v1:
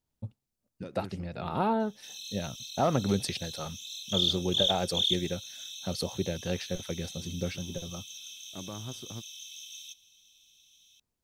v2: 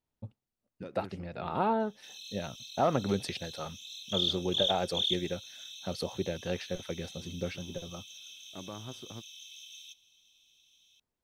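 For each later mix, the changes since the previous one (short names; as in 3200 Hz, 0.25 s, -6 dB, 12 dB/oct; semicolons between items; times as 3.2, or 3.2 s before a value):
master: add tone controls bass -5 dB, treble -8 dB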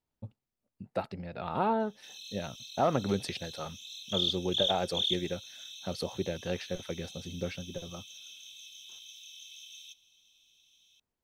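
second voice: muted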